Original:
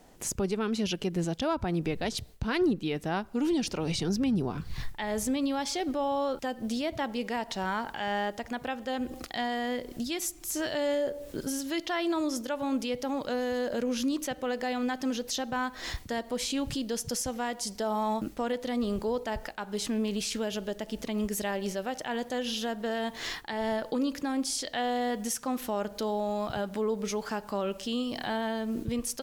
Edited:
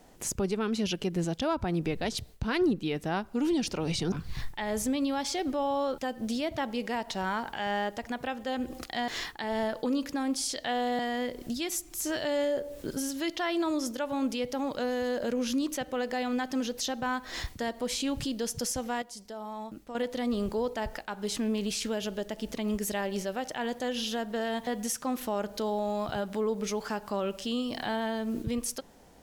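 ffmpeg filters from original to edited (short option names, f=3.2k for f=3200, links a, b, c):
-filter_complex "[0:a]asplit=7[a][b][c][d][e][f][g];[a]atrim=end=4.122[h];[b]atrim=start=4.528:end=9.492[i];[c]atrim=start=23.168:end=25.082[j];[d]atrim=start=9.488:end=17.522[k];[e]atrim=start=17.518:end=18.452,asetpts=PTS-STARTPTS,volume=-10dB[l];[f]atrim=start=18.448:end=23.172[m];[g]atrim=start=25.078[n];[h][i]acrossfade=d=0.004:c1=hsin:c2=hsin[o];[o][j]acrossfade=d=0.004:c1=hsin:c2=hsin[p];[p][k]acrossfade=d=0.004:c1=hsin:c2=hsin[q];[q][l]acrossfade=d=0.004:c1=hsin:c2=hsin[r];[r][m]acrossfade=d=0.004:c1=hsin:c2=hsin[s];[s][n]acrossfade=d=0.004:c1=hsin:c2=hsin"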